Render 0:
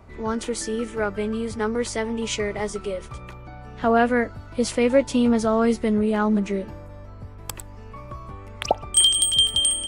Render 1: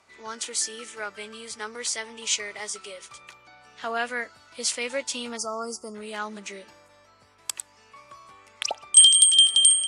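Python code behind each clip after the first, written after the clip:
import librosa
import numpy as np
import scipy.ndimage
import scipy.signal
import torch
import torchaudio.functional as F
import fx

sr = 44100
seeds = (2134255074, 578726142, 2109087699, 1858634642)

y = fx.high_shelf(x, sr, hz=9800.0, db=4.5)
y = fx.spec_box(y, sr, start_s=5.37, length_s=0.58, low_hz=1400.0, high_hz=4500.0, gain_db=-27)
y = fx.weighting(y, sr, curve='ITU-R 468')
y = y * 10.0 ** (-7.5 / 20.0)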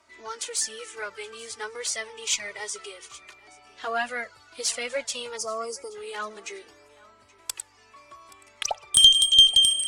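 y = fx.env_flanger(x, sr, rest_ms=3.2, full_db=-15.5)
y = fx.cheby_harmonics(y, sr, harmonics=(4,), levels_db=(-25,), full_scale_db=-3.5)
y = y + 10.0 ** (-22.5 / 20.0) * np.pad(y, (int(825 * sr / 1000.0), 0))[:len(y)]
y = y * 10.0 ** (2.5 / 20.0)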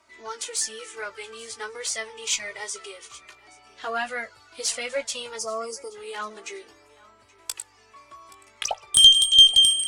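y = fx.doubler(x, sr, ms=18.0, db=-9.5)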